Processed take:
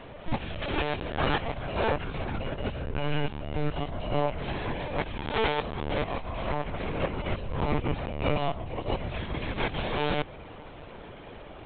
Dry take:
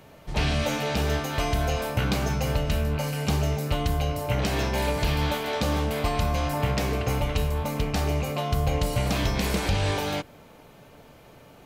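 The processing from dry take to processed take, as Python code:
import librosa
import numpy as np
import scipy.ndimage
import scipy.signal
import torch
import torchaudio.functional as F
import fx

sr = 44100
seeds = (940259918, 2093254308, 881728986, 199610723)

y = fx.peak_eq(x, sr, hz=96.0, db=-7.5, octaves=0.38)
y = fx.over_compress(y, sr, threshold_db=-30.0, ratio=-0.5)
y = fx.lpc_vocoder(y, sr, seeds[0], excitation='pitch_kept', order=16)
y = y * 10.0 ** (1.5 / 20.0)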